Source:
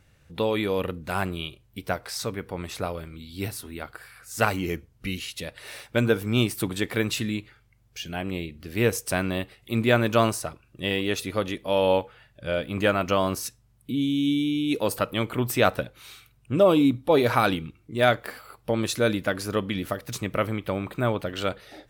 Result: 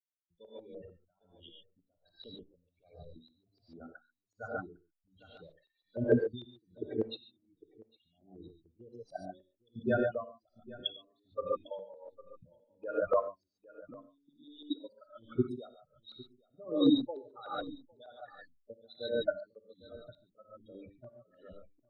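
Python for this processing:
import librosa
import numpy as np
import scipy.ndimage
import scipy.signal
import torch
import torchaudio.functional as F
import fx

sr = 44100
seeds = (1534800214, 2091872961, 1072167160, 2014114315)

p1 = fx.hum_notches(x, sr, base_hz=50, count=4)
p2 = fx.dereverb_blind(p1, sr, rt60_s=1.2)
p3 = fx.peak_eq(p2, sr, hz=3900.0, db=12.0, octaves=0.51)
p4 = fx.level_steps(p3, sr, step_db=23)
p5 = fx.backlash(p4, sr, play_db=-43.5)
p6 = fx.spec_topn(p5, sr, count=8)
p7 = fx.filter_lfo_lowpass(p6, sr, shape='saw_up', hz=6.7, low_hz=460.0, high_hz=7000.0, q=1.8)
p8 = p7 + fx.echo_single(p7, sr, ms=805, db=-21.0, dry=0)
p9 = fx.rev_gated(p8, sr, seeds[0], gate_ms=160, shape='rising', drr_db=3.0)
y = p9 * 10.0 ** (-29 * (0.5 - 0.5 * np.cos(2.0 * np.pi * 1.3 * np.arange(len(p9)) / sr)) / 20.0)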